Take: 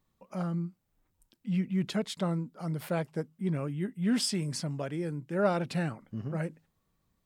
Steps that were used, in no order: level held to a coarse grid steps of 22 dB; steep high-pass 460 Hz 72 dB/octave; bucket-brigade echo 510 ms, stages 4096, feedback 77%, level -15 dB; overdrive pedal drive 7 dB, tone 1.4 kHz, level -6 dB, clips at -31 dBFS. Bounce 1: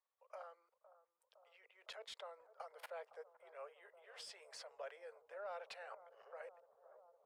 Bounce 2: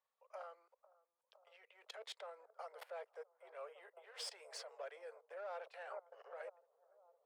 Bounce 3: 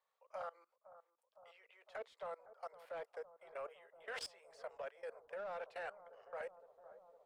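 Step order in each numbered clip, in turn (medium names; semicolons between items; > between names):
level held to a coarse grid > steep high-pass > overdrive pedal > bucket-brigade echo; overdrive pedal > bucket-brigade echo > level held to a coarse grid > steep high-pass; steep high-pass > overdrive pedal > level held to a coarse grid > bucket-brigade echo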